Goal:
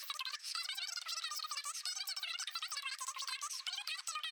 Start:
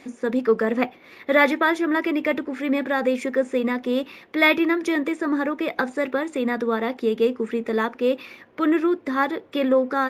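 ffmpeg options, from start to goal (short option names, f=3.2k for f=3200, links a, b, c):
-filter_complex "[0:a]highpass=f=700:w=0.5412,highpass=f=700:w=1.3066,tiltshelf=f=970:g=-5,acontrast=32,alimiter=limit=-12.5dB:level=0:latency=1:release=148,acompressor=threshold=-35dB:ratio=12,asplit=2[a][b];[b]adelay=1224,volume=-13dB,highshelf=f=4k:g=-27.6[c];[a][c]amix=inputs=2:normalize=0,asetrate=103194,aresample=44100,volume=-3dB"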